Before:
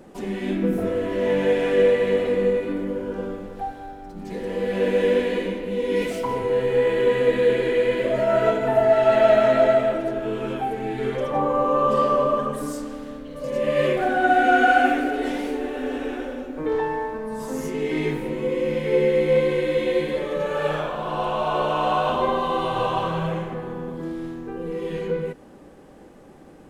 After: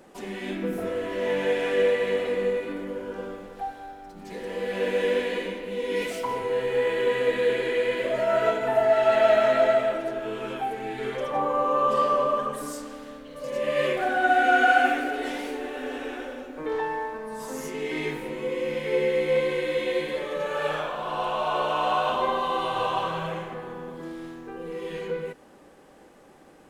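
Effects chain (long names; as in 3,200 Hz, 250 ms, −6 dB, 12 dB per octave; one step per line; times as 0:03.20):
low-shelf EQ 420 Hz −11 dB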